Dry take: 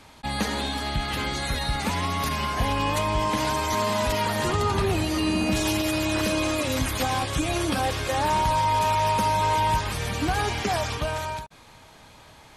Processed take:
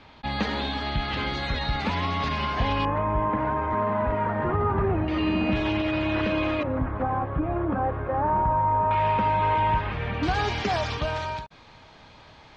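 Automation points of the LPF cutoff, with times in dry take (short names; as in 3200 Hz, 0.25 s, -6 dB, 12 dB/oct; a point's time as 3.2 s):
LPF 24 dB/oct
4200 Hz
from 2.85 s 1700 Hz
from 5.08 s 3000 Hz
from 6.63 s 1400 Hz
from 8.91 s 2700 Hz
from 10.23 s 5100 Hz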